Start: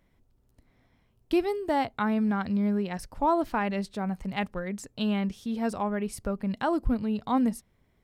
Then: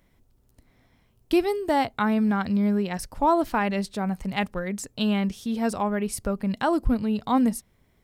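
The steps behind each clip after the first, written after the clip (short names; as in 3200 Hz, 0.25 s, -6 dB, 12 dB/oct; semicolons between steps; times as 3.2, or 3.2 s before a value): high shelf 4800 Hz +6 dB; gain +3.5 dB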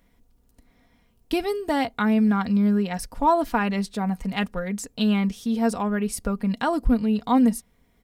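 comb 4.2 ms, depth 50%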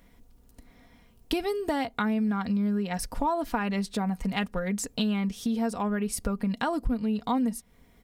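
compressor 4:1, threshold -31 dBFS, peak gain reduction 14 dB; gain +4.5 dB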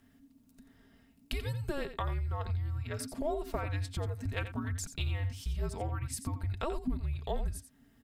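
frequency shift -290 Hz; echo 87 ms -11 dB; gain -6.5 dB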